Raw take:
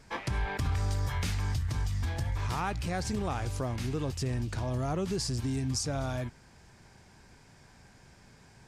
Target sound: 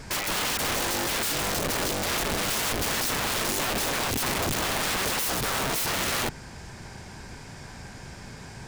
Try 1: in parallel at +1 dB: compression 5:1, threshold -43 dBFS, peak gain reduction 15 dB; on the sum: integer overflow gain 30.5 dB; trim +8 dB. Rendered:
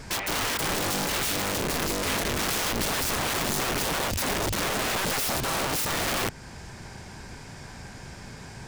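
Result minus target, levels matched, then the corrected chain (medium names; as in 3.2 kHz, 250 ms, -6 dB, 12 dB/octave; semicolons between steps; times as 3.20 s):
compression: peak gain reduction +7 dB
in parallel at +1 dB: compression 5:1, threshold -34.5 dBFS, peak gain reduction 8.5 dB; on the sum: integer overflow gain 30.5 dB; trim +8 dB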